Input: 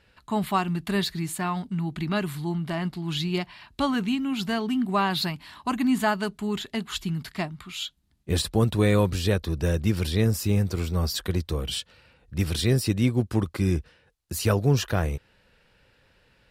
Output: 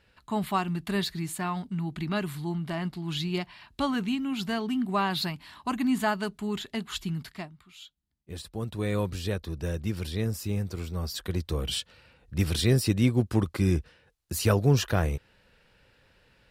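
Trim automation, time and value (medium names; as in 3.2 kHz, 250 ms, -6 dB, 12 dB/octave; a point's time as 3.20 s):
7.20 s -3 dB
7.63 s -15 dB
8.40 s -15 dB
8.99 s -7 dB
11.06 s -7 dB
11.65 s -0.5 dB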